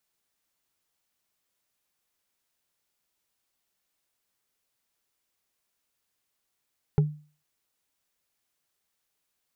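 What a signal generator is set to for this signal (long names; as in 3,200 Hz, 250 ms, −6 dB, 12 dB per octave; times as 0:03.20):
struck wood, lowest mode 150 Hz, decay 0.38 s, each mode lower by 8 dB, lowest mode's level −14.5 dB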